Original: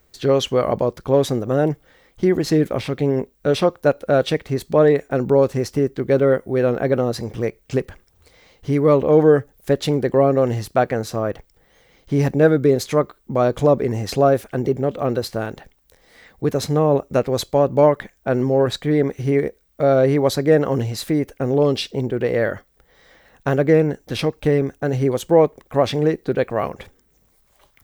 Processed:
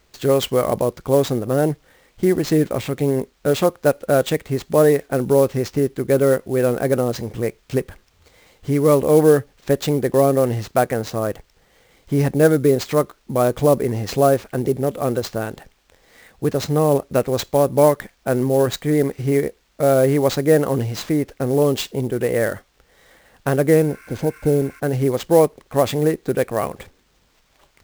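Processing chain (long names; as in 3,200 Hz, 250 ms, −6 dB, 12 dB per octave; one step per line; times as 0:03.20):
healed spectral selection 0:23.90–0:24.77, 980–6,000 Hz before
sample-rate reduction 11,000 Hz, jitter 20%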